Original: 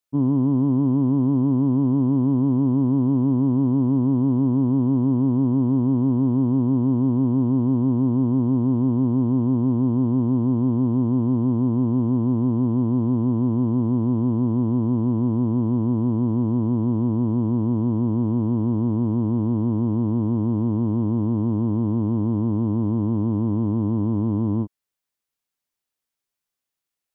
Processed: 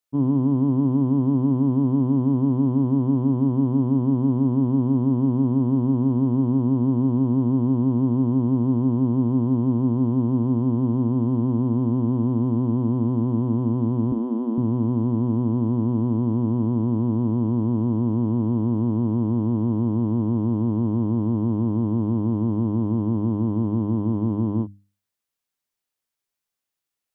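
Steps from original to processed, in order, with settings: 14.12–14.58 elliptic high-pass 180 Hz, stop band 40 dB; notches 50/100/150/200/250/300 Hz

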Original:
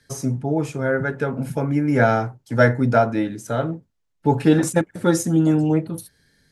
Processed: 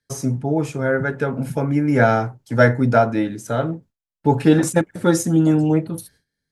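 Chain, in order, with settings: gate with hold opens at -45 dBFS; gain +1.5 dB

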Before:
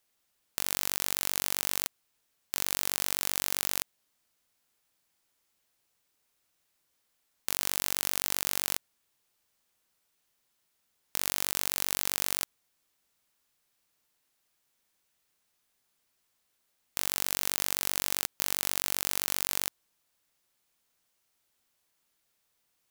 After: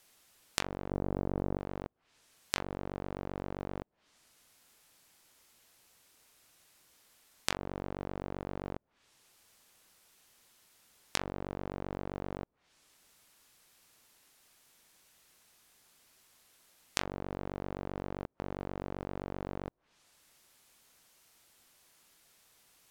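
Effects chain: treble ducked by the level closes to 520 Hz, closed at -42.5 dBFS; 0.91–1.58 tilt shelf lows +8.5 dB, about 1200 Hz; in parallel at 0 dB: compressor, threshold -55 dBFS, peak gain reduction 20.5 dB; on the sum: gain +6 dB

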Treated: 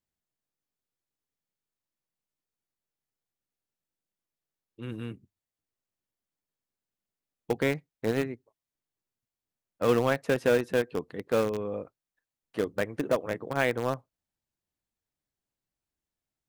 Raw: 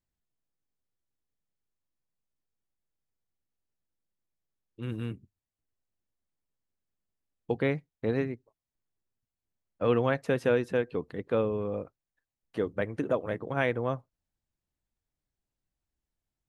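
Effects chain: low shelf 86 Hz -11.5 dB; in parallel at -11 dB: bit-crush 4-bit

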